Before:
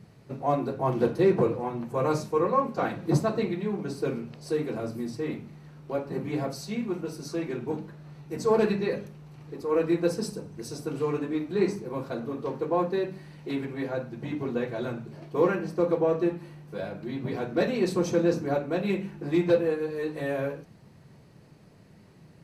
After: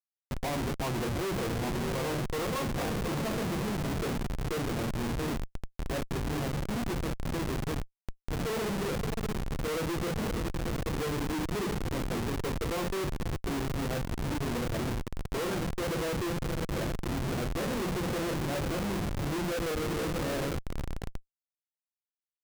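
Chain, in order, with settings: echo that smears into a reverb 592 ms, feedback 48%, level -10.5 dB; Schmitt trigger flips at -30.5 dBFS; trim -3 dB

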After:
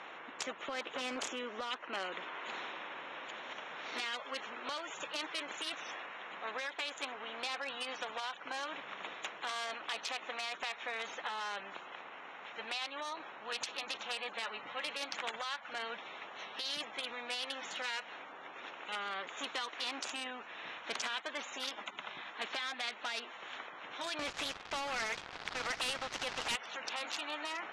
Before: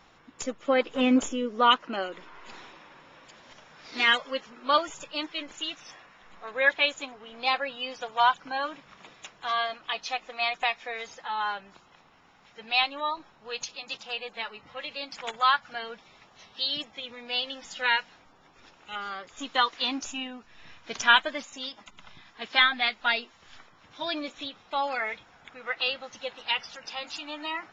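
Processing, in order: local Wiener filter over 9 samples; high-pass 580 Hz 12 dB/octave; 24.19–26.56 s: waveshaping leveller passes 3; compression 4:1, threshold -32 dBFS, peak gain reduction 14.5 dB; peak limiter -30 dBFS, peak gain reduction 10.5 dB; low-pass 5.3 kHz 12 dB/octave; spectrum-flattening compressor 2:1; trim +9 dB

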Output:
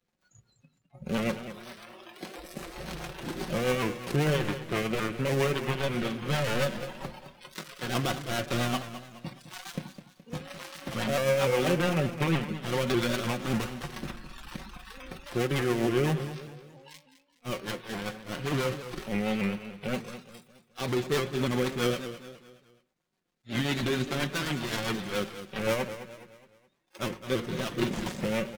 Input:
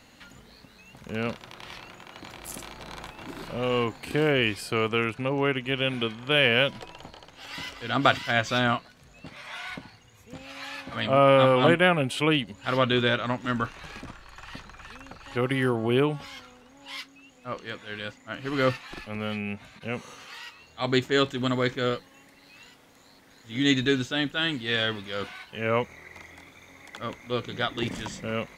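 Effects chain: dead-time distortion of 0.29 ms; spectral noise reduction 27 dB; comb 5.5 ms, depth 50%; in parallel at +2 dB: compression, threshold -36 dBFS, peak gain reduction 20.5 dB; on the sum: peak limiter -15 dBFS, peak gain reduction 9.5 dB; rotary cabinet horn 7.5 Hz; feedback delay 210 ms, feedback 42%, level -12 dB; on a send at -14 dB: reverberation, pre-delay 3 ms; on the sum: vibrato with a chosen wave saw up 3.4 Hz, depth 100 cents

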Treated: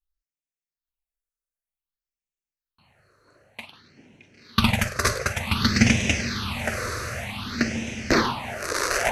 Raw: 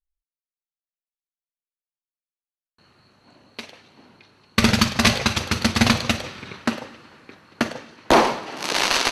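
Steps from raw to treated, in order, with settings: echo that smears into a reverb 1022 ms, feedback 52%, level -5.5 dB; phase shifter stages 6, 0.54 Hz, lowest notch 210–1200 Hz

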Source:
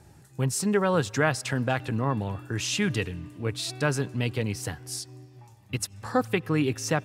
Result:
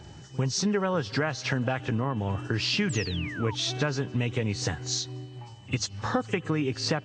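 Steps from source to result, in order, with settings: knee-point frequency compression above 2.7 kHz 1.5:1; compression 6:1, threshold -31 dBFS, peak gain reduction 13 dB; whistle 3 kHz -66 dBFS; on a send: reverse echo 48 ms -20.5 dB; on the sum: painted sound fall, 2.89–3.55 s, 840–8300 Hz -46 dBFS; trim +7 dB

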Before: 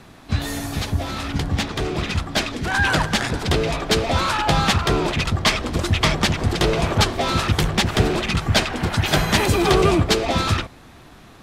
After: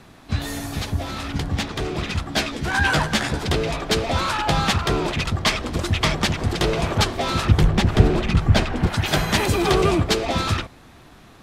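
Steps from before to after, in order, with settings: 2.24–3.46 s: doubling 14 ms -4.5 dB; 7.45–8.87 s: tilt EQ -2 dB/octave; trim -2 dB

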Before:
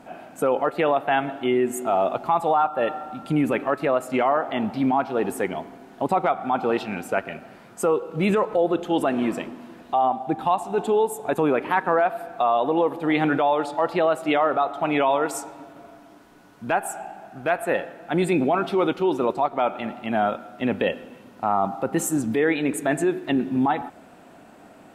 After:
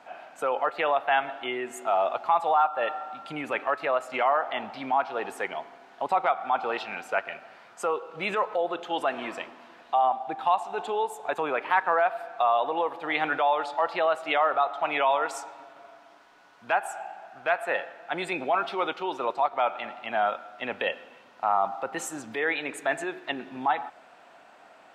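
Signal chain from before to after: three-band isolator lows -19 dB, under 580 Hz, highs -15 dB, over 6.3 kHz

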